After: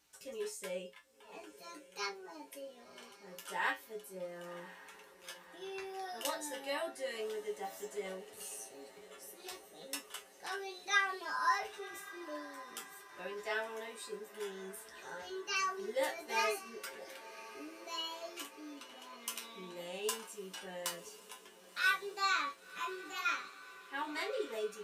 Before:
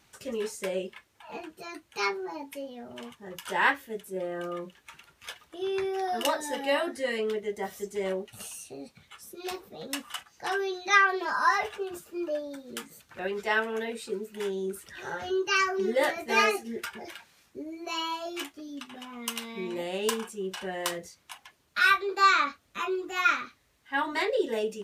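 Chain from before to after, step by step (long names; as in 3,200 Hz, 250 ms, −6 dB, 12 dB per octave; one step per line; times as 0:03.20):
bass and treble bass −7 dB, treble +6 dB
tuned comb filter 60 Hz, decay 0.18 s, harmonics odd, mix 90%
feedback delay with all-pass diffusion 1,058 ms, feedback 61%, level −16 dB
level −3 dB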